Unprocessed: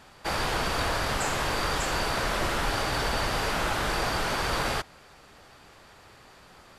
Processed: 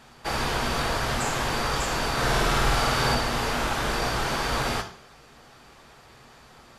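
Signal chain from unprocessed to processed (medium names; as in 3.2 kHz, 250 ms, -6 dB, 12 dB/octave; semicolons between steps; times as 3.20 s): 2.13–3.15 s: flutter echo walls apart 8.7 m, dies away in 1.2 s; on a send at -6 dB: reverberation RT60 0.50 s, pre-delay 3 ms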